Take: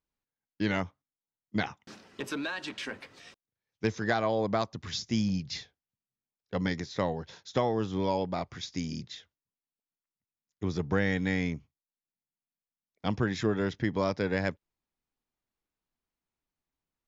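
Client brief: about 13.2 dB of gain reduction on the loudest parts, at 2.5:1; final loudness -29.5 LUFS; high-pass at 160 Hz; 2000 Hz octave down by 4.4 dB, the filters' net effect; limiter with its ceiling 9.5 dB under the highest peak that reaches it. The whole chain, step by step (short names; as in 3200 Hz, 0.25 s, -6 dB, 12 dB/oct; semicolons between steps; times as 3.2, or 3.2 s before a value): HPF 160 Hz; bell 2000 Hz -5.5 dB; compressor 2.5:1, threshold -45 dBFS; gain +18 dB; limiter -18 dBFS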